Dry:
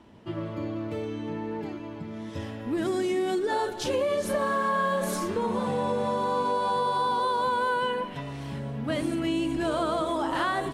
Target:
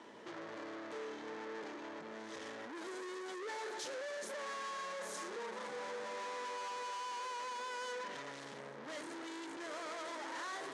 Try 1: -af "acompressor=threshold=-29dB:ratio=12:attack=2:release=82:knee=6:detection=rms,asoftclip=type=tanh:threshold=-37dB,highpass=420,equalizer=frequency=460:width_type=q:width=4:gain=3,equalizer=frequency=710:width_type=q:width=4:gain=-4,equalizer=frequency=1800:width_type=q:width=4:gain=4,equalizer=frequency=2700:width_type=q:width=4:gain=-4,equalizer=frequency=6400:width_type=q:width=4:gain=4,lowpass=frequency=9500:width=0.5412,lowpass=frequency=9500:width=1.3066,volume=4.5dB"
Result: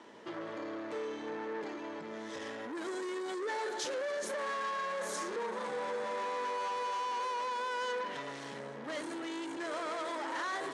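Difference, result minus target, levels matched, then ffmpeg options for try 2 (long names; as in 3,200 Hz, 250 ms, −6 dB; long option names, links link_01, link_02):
soft clipping: distortion −4 dB
-af "acompressor=threshold=-29dB:ratio=12:attack=2:release=82:knee=6:detection=rms,asoftclip=type=tanh:threshold=-45.5dB,highpass=420,equalizer=frequency=460:width_type=q:width=4:gain=3,equalizer=frequency=710:width_type=q:width=4:gain=-4,equalizer=frequency=1800:width_type=q:width=4:gain=4,equalizer=frequency=2700:width_type=q:width=4:gain=-4,equalizer=frequency=6400:width_type=q:width=4:gain=4,lowpass=frequency=9500:width=0.5412,lowpass=frequency=9500:width=1.3066,volume=4.5dB"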